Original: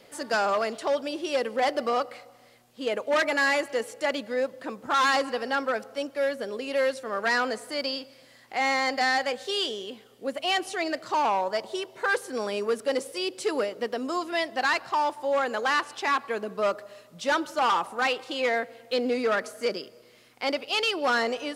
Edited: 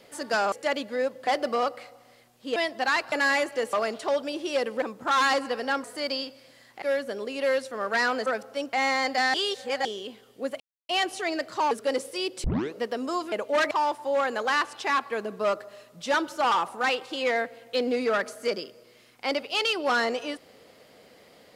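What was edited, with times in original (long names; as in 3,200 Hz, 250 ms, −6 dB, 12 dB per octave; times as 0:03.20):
0:00.52–0:01.61: swap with 0:03.90–0:04.65
0:02.90–0:03.29: swap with 0:14.33–0:14.89
0:05.67–0:06.14: swap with 0:07.58–0:08.56
0:09.17–0:09.68: reverse
0:10.43: splice in silence 0.29 s
0:11.25–0:12.72: remove
0:13.45: tape start 0.31 s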